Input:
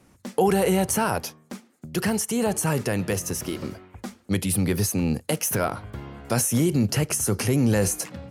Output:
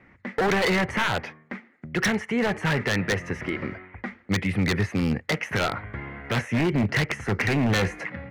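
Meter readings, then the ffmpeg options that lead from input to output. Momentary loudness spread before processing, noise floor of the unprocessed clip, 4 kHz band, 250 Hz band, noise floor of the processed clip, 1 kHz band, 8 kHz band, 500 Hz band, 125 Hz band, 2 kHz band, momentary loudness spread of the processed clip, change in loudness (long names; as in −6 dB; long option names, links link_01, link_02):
16 LU, −59 dBFS, +2.5 dB, −1.5 dB, −56 dBFS, −0.5 dB, −13.5 dB, −2.5 dB, −1.5 dB, +8.0 dB, 14 LU, −1.5 dB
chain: -af "lowpass=frequency=2000:width_type=q:width=6.2,aeval=exprs='0.15*(abs(mod(val(0)/0.15+3,4)-2)-1)':channel_layout=same"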